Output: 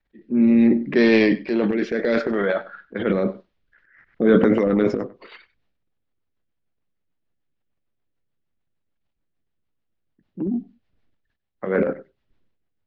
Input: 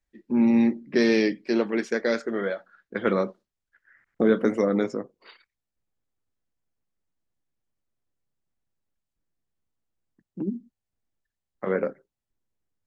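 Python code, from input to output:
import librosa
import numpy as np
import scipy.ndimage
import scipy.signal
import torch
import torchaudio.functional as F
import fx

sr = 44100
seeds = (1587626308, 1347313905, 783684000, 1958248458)

y = scipy.signal.sosfilt(scipy.signal.butter(4, 3900.0, 'lowpass', fs=sr, output='sos'), x)
y = fx.transient(y, sr, attack_db=-2, sustain_db=12)
y = fx.rotary_switch(y, sr, hz=0.7, then_hz=6.7, switch_at_s=3.18)
y = y + 10.0 ** (-19.0 / 20.0) * np.pad(y, (int(97 * sr / 1000.0), 0))[:len(y)]
y = y * librosa.db_to_amplitude(5.5)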